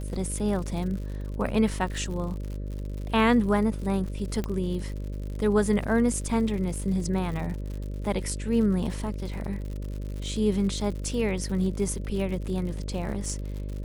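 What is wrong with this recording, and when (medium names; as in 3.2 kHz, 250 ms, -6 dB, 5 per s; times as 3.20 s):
buzz 50 Hz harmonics 12 -33 dBFS
crackle 97 per s -35 dBFS
4.44 s: pop -17 dBFS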